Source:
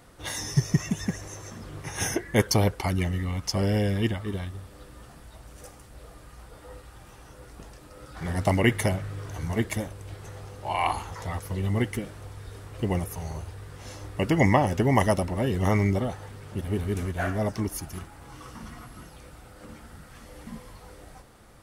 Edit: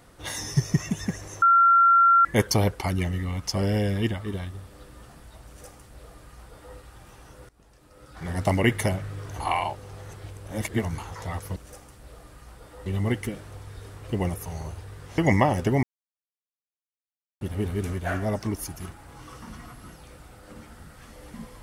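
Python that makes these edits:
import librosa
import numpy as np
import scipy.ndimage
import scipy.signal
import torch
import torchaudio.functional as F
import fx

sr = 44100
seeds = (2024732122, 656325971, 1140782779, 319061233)

y = fx.edit(x, sr, fx.bleep(start_s=1.42, length_s=0.83, hz=1370.0, db=-13.5),
    fx.duplicate(start_s=5.47, length_s=1.3, to_s=11.56),
    fx.fade_in_from(start_s=7.49, length_s=0.96, floor_db=-20.0),
    fx.reverse_span(start_s=9.4, length_s=1.58),
    fx.cut(start_s=13.88, length_s=0.43),
    fx.silence(start_s=14.96, length_s=1.58), tone=tone)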